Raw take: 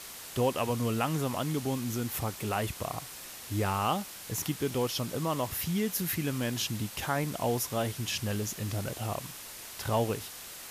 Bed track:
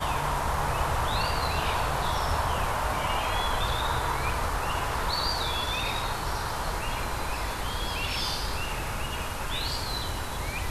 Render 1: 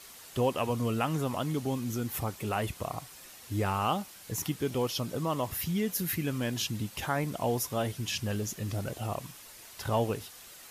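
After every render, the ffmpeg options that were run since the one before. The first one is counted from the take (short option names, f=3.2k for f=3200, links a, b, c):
-af "afftdn=nr=7:nf=-45"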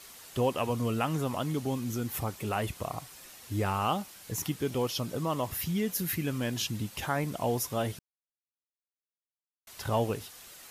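-filter_complex "[0:a]asplit=3[a][b][c];[a]atrim=end=7.99,asetpts=PTS-STARTPTS,afade=t=out:st=7.986:d=0.004:c=hsin[d];[b]atrim=start=7.99:end=9.67,asetpts=PTS-STARTPTS,volume=0[e];[c]atrim=start=9.67,asetpts=PTS-STARTPTS,afade=t=in:d=0.004:c=hsin[f];[d][e][f]concat=n=3:v=0:a=1"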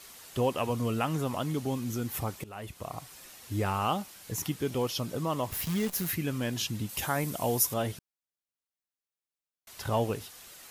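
-filter_complex "[0:a]asettb=1/sr,asplit=3[a][b][c];[a]atrim=end=5.514[d];[b]atrim=start=5.51:end=6.11,asetpts=PTS-STARTPTS,afade=t=in:d=0.004:c=qsin,afade=t=out:st=0.596:d=0.004:c=qsin,acrusher=bits=7:dc=4:mix=0:aa=0.000001[e];[c]atrim=start=6.106[f];[d][e]acrossfade=d=0.004:c1=hsin:c2=qsin[g];[g][f]acrossfade=d=0.004:c1=qsin:c2=hsin,asettb=1/sr,asplit=3[h][i][j];[h]atrim=end=6.894[k];[i]atrim=start=6.89:end=7.74,asetpts=PTS-STARTPTS,afade=t=in:d=0.004:c=qsin,afade=t=out:st=0.846:d=0.004:c=qsin,highshelf=f=7k:g=12[l];[j]atrim=start=7.736[m];[k][l]acrossfade=d=0.004:c1=hsin:c2=qsin[n];[n][m]acrossfade=d=0.004:c1=qsin:c2=hsin,asplit=2[o][p];[o]atrim=end=2.44,asetpts=PTS-STARTPTS,afade=t=out:st=2.436:d=0.004:c=hsin:silence=0.11885[q];[p]atrim=start=2.44,asetpts=PTS-STARTPTS,afade=t=in:d=0.69:silence=0.11885[r];[q][r]concat=n=2:v=0:a=1"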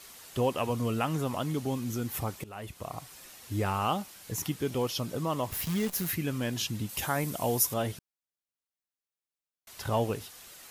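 -af anull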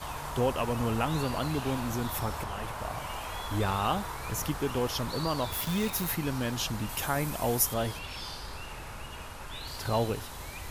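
-filter_complex "[1:a]volume=-10dB[a];[0:a][a]amix=inputs=2:normalize=0"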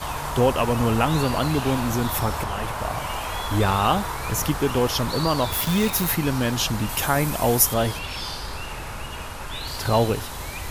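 -af "volume=8.5dB"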